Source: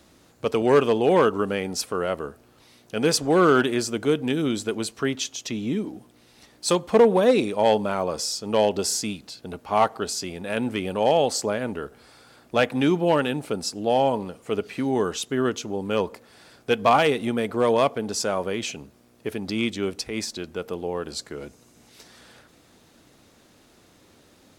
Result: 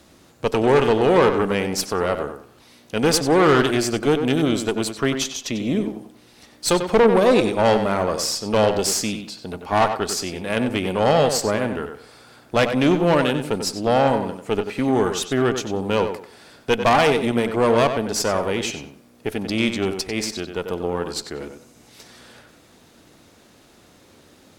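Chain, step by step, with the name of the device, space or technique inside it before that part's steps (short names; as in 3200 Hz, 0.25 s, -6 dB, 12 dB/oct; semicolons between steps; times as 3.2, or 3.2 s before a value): rockabilly slapback (tube stage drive 17 dB, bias 0.6; tape echo 94 ms, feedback 29%, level -6.5 dB, low-pass 3300 Hz); gain +6.5 dB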